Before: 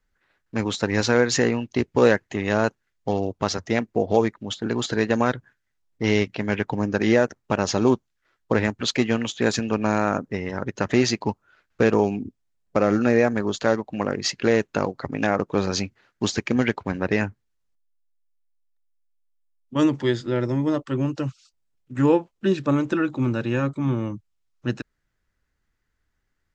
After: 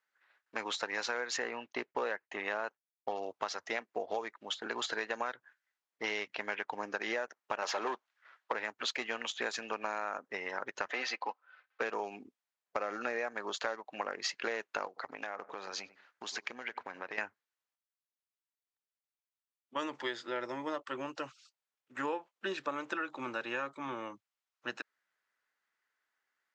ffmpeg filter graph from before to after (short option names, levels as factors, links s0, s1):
-filter_complex "[0:a]asettb=1/sr,asplit=3[s0][s1][s2];[s0]atrim=end=1.374[s3];[s1]atrim=start=1.37:end=3.16,asetpts=PTS-STARTPTS,afade=t=in:d=0.004:c=qsin,afade=t=out:st=1.786:d=0.004:c=qsin,aemphasis=mode=reproduction:type=50fm,agate=range=0.0224:threshold=0.00501:ratio=3:release=100:detection=peak[s4];[s2]atrim=start=3.156[s5];[s3][s4]acrossfade=d=0.004:c1=hsin:c2=qsin[s6];[s6][s5]acrossfade=d=0.004:c1=qsin:c2=hsin,asettb=1/sr,asplit=3[s7][s8][s9];[s7]atrim=end=7.624[s10];[s8]atrim=start=7.62:end=8.53,asetpts=PTS-STARTPTS,afade=t=in:d=0.004:c=qsin,afade=t=out:st=0.906:d=0.004:c=qsin,highshelf=f=3000:g=-8.5,asplit=2[s11][s12];[s12]highpass=f=720:p=1,volume=8.91,asoftclip=type=tanh:threshold=0.501[s13];[s11][s13]amix=inputs=2:normalize=0,lowpass=f=5900:p=1,volume=0.501[s14];[s9]atrim=start=8.526[s15];[s10][s14]acrossfade=d=0.004:c1=hsin:c2=qsin[s16];[s16][s15]acrossfade=d=0.004:c1=qsin:c2=hsin,asettb=1/sr,asplit=3[s17][s18][s19];[s17]atrim=end=10.914[s20];[s18]atrim=start=10.91:end=11.81,asetpts=PTS-STARTPTS,afade=t=in:d=0.004:c=qsin,afade=t=out:st=0.896:d=0.004:c=qsin,highpass=400,lowpass=4000,aecho=1:1:3.9:0.52,atrim=end_sample=39690[s21];[s19]atrim=start=11.806[s22];[s20][s21]acrossfade=d=0.004:c1=hsin:c2=qsin[s23];[s23][s22]acrossfade=d=0.004:c1=qsin:c2=hsin,asettb=1/sr,asplit=3[s24][s25][s26];[s24]atrim=end=14.874[s27];[s25]atrim=start=14.87:end=17.18,asetpts=PTS-STARTPTS,afade=t=in:d=0.004:c=qsin,afade=t=out:st=2.306:d=0.004:c=qsin,asplit=2[s28][s29];[s29]adelay=94,lowpass=f=1400:p=1,volume=0.0794,asplit=2[s30][s31];[s31]adelay=94,lowpass=f=1400:p=1,volume=0.32[s32];[s28][s30][s32]amix=inputs=3:normalize=0,atrim=end_sample=101871,acompressor=threshold=0.0398:ratio=10:attack=3.2:release=140:knee=1:detection=peak[s33];[s26]atrim=start=17.176[s34];[s27][s33]acrossfade=d=0.004:c1=hsin:c2=qsin[s35];[s35][s34]acrossfade=d=0.004:c1=qsin:c2=hsin,highpass=820,highshelf=f=4500:g=-10,acompressor=threshold=0.0251:ratio=6"